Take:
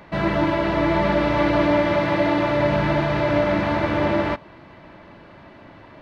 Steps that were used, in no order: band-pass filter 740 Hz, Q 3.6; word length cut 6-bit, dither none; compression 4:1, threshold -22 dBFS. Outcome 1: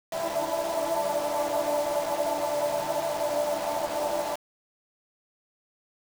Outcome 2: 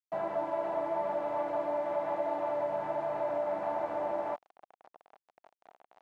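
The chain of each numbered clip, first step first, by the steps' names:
band-pass filter > compression > word length cut; compression > word length cut > band-pass filter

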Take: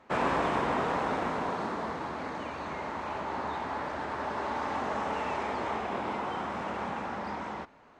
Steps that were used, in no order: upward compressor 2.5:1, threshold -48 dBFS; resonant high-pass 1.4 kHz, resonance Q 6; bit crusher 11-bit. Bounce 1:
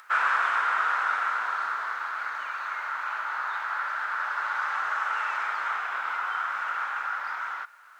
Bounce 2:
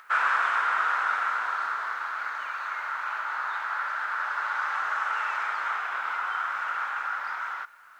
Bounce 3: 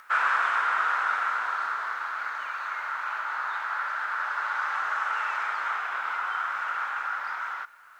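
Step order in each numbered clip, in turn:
bit crusher > resonant high-pass > upward compressor; resonant high-pass > upward compressor > bit crusher; resonant high-pass > bit crusher > upward compressor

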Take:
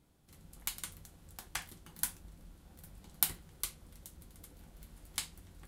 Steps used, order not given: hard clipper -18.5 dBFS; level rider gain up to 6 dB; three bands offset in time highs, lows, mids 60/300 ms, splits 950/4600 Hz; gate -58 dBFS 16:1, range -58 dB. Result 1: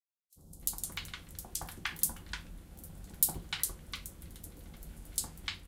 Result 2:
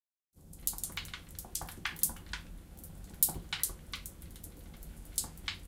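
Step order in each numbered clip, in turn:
hard clipper > level rider > gate > three bands offset in time; hard clipper > three bands offset in time > level rider > gate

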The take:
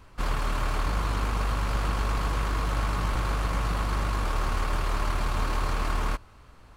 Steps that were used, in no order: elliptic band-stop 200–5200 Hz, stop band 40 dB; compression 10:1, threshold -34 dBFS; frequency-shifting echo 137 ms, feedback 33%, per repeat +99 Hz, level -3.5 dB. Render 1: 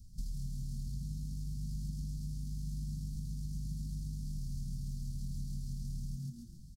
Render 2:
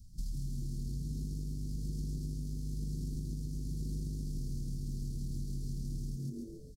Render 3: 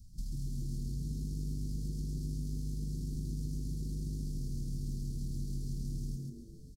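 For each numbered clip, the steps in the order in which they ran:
frequency-shifting echo > compression > elliptic band-stop; elliptic band-stop > frequency-shifting echo > compression; compression > elliptic band-stop > frequency-shifting echo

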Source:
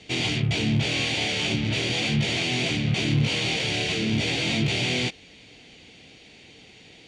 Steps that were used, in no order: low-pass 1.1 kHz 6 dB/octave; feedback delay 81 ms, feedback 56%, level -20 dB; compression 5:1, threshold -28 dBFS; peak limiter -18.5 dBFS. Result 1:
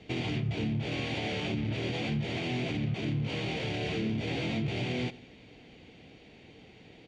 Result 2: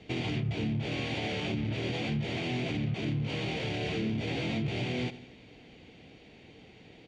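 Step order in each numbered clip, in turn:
peak limiter > low-pass > compression > feedback delay; feedback delay > peak limiter > low-pass > compression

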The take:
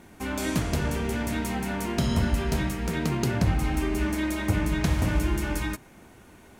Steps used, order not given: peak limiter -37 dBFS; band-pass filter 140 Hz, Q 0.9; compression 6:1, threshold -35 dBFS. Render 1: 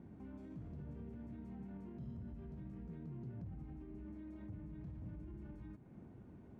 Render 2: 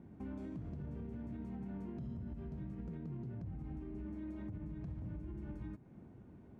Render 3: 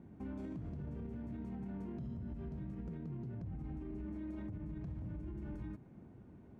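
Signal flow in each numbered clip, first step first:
compression > peak limiter > band-pass filter; compression > band-pass filter > peak limiter; band-pass filter > compression > peak limiter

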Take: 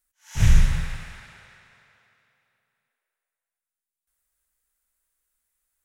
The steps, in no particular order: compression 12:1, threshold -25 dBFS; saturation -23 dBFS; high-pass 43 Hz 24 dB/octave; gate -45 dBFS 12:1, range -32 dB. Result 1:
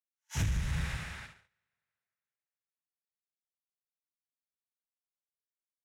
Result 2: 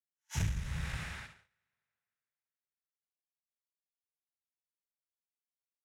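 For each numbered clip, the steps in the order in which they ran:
gate > high-pass > compression > saturation; compression > saturation > high-pass > gate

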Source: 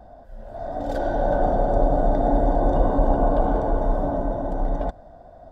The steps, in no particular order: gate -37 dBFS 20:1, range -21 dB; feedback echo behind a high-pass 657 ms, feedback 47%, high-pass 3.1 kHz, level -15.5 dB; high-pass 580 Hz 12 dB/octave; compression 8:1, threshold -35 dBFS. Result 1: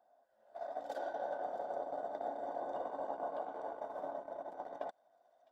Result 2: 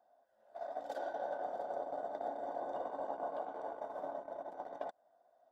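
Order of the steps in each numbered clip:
high-pass > compression > gate > feedback echo behind a high-pass; high-pass > compression > feedback echo behind a high-pass > gate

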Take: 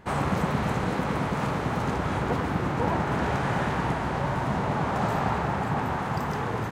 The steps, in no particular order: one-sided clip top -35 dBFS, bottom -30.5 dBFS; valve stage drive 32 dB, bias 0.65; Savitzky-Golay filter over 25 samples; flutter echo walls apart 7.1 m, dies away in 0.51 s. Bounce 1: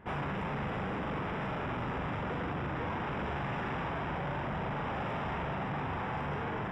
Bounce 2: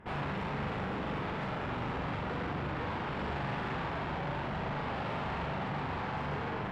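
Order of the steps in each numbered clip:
valve stage > flutter echo > one-sided clip > Savitzky-Golay filter; one-sided clip > Savitzky-Golay filter > valve stage > flutter echo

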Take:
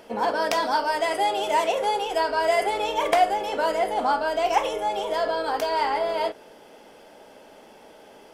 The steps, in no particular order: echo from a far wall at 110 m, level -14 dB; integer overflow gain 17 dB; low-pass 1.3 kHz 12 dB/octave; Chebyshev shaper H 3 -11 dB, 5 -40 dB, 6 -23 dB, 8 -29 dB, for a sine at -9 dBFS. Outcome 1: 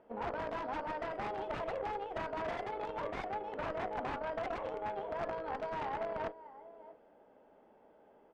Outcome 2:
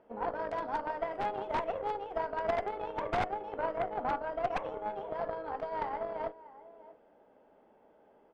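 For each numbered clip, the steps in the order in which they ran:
echo from a far wall > integer overflow > low-pass > Chebyshev shaper; echo from a far wall > Chebyshev shaper > integer overflow > low-pass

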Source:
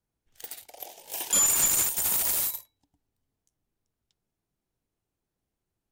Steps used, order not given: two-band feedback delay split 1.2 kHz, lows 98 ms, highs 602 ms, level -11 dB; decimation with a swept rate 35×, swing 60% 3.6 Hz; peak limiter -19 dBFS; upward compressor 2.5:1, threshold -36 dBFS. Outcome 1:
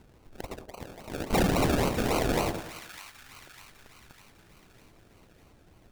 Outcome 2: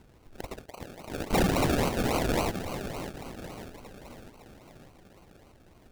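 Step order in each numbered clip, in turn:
upward compressor > decimation with a swept rate > peak limiter > two-band feedback delay; upward compressor > two-band feedback delay > decimation with a swept rate > peak limiter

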